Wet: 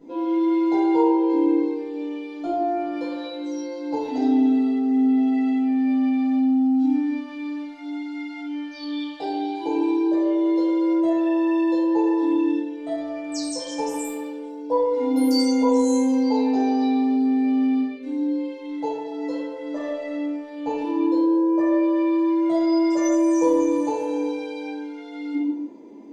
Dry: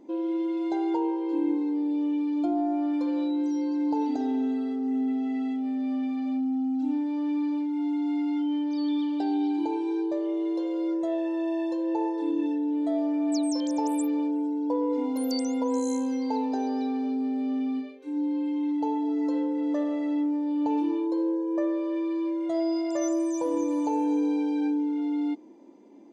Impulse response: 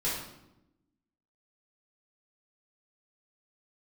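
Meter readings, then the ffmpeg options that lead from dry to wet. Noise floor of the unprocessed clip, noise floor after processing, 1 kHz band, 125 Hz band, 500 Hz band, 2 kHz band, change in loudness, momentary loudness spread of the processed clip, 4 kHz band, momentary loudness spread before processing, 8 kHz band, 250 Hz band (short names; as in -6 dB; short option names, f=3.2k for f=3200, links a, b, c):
-30 dBFS, -36 dBFS, +6.0 dB, n/a, +7.0 dB, +9.0 dB, +5.5 dB, 12 LU, +8.0 dB, 2 LU, +5.0 dB, +5.0 dB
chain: -filter_complex "[1:a]atrim=start_sample=2205,afade=t=out:st=0.44:d=0.01,atrim=end_sample=19845[a];[0:a][a]afir=irnorm=-1:irlink=0"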